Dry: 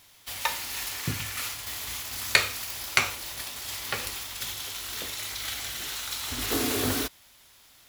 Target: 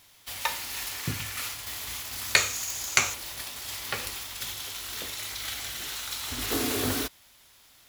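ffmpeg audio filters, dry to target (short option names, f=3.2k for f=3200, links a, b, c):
-filter_complex "[0:a]asettb=1/sr,asplit=3[a][b][c];[a]atrim=end=2.364[d];[b]atrim=start=2.36:end=3.14,asetpts=PTS-STARTPTS,afade=t=in:d=0.004:c=qsin,afade=t=out:st=0.776:d=0.004:c=qsin,equalizer=f=6.7k:t=o:w=0.28:g=14.5[e];[c]atrim=start=3.136[f];[d][e]acrossfade=d=0.004:c1=hsin:c2=qsin[g];[g][f]acrossfade=d=0.004:c1=qsin:c2=hsin,volume=-1dB"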